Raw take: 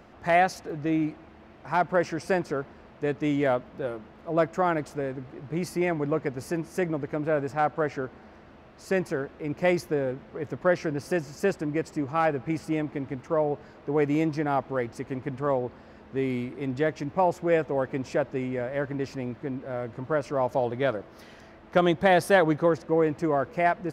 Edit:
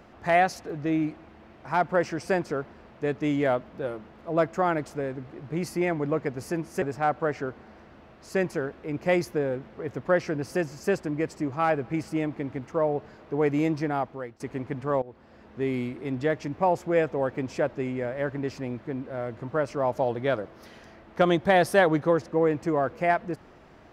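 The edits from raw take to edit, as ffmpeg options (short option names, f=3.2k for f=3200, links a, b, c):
-filter_complex "[0:a]asplit=4[a][b][c][d];[a]atrim=end=6.822[e];[b]atrim=start=7.378:end=14.96,asetpts=PTS-STARTPTS,afade=t=out:st=7.042:d=0.54:silence=0.11885[f];[c]atrim=start=14.96:end=15.58,asetpts=PTS-STARTPTS,afade=t=in:d=0.004:c=hsin:silence=0.11885,afade=t=out:st=0.616:d=0.004:c=hsin:silence=0.11885[g];[d]atrim=start=15.58,asetpts=PTS-STARTPTS,afade=t=in:d=0.73:c=qsin:silence=0.11885[h];[f][g][h]concat=n=3:v=0:a=1[i];[e][i]acrossfade=d=0.004:c1=hsin:c2=hsin"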